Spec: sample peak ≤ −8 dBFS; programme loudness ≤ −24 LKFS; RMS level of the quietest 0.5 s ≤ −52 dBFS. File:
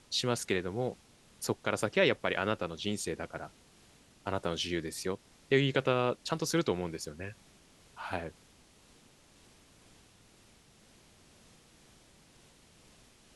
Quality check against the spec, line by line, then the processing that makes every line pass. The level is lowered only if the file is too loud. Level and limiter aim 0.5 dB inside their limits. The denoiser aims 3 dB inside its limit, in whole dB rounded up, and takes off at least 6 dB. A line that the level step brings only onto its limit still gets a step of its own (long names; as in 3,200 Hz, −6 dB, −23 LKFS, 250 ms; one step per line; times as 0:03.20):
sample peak −12.5 dBFS: in spec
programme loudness −33.0 LKFS: in spec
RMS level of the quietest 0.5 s −61 dBFS: in spec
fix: no processing needed